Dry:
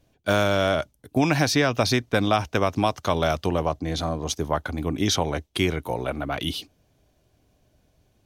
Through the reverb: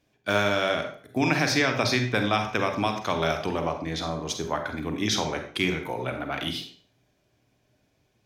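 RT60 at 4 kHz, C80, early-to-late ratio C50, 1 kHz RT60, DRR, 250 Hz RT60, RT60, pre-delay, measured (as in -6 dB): 0.45 s, 11.0 dB, 7.5 dB, 0.45 s, 5.0 dB, 0.45 s, 0.45 s, 35 ms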